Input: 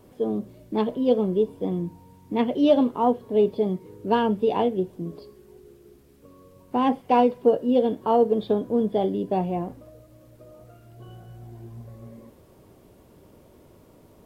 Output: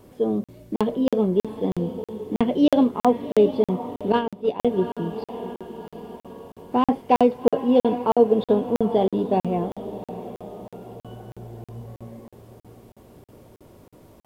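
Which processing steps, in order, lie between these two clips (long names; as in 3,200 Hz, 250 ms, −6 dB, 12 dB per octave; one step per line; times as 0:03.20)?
feedback delay with all-pass diffusion 762 ms, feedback 48%, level −13.5 dB
0:04.12–0:04.60: noise gate −19 dBFS, range −13 dB
regular buffer underruns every 0.32 s, samples 2,048, zero, from 0:00.44
level +3 dB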